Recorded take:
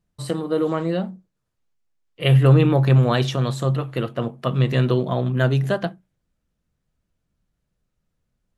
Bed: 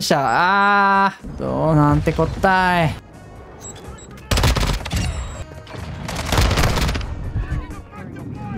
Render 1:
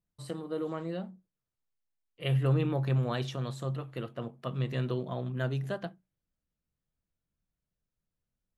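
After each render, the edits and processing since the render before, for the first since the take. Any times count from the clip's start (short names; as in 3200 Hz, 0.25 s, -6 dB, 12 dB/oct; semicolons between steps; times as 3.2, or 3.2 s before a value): gain -13 dB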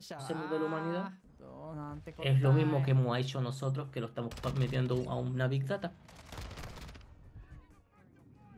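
add bed -28.5 dB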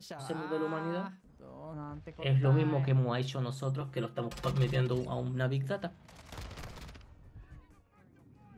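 1.73–3.22 air absorption 74 m; 3.8–4.9 comb 5.7 ms, depth 88%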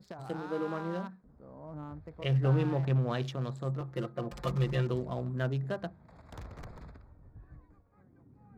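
Wiener smoothing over 15 samples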